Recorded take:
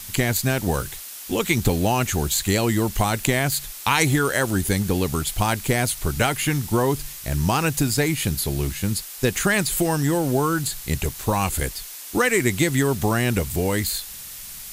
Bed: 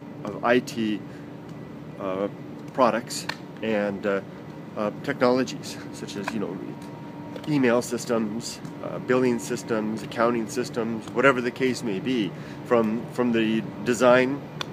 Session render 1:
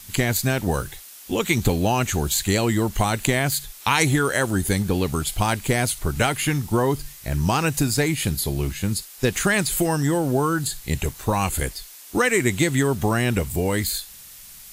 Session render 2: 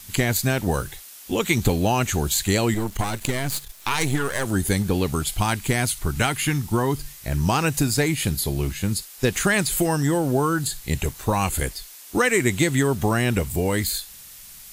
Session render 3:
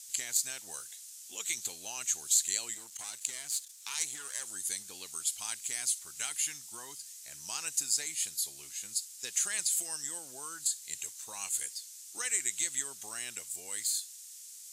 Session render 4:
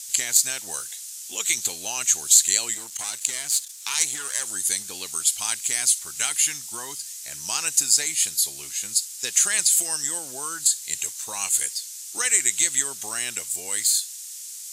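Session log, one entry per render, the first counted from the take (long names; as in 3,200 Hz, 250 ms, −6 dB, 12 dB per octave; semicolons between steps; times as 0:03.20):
noise reduction from a noise print 6 dB
0:02.74–0:04.46: gain on one half-wave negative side −12 dB; 0:05.34–0:06.99: parametric band 540 Hz −5.5 dB
resonant band-pass 7,200 Hz, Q 2
level +11.5 dB; brickwall limiter −1 dBFS, peak gain reduction 1.5 dB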